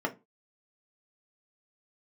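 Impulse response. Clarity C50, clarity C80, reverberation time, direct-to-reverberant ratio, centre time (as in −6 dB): 18.0 dB, 25.5 dB, 0.25 s, 2.5 dB, 8 ms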